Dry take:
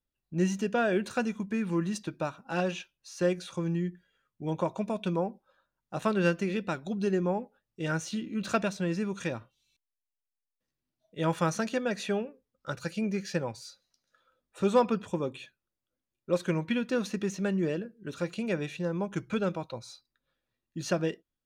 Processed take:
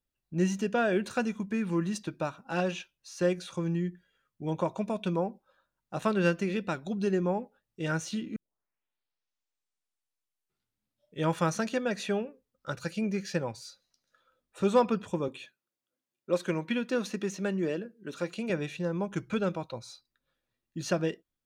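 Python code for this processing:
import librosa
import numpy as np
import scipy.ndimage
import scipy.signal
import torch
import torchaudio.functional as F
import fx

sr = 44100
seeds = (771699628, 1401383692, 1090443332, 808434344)

y = fx.highpass(x, sr, hz=190.0, slope=12, at=(15.28, 18.5))
y = fx.edit(y, sr, fx.tape_start(start_s=8.36, length_s=2.94), tone=tone)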